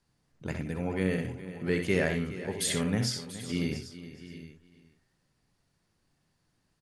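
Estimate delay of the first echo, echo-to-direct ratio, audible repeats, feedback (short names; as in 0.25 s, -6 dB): 64 ms, -5.0 dB, 7, no steady repeat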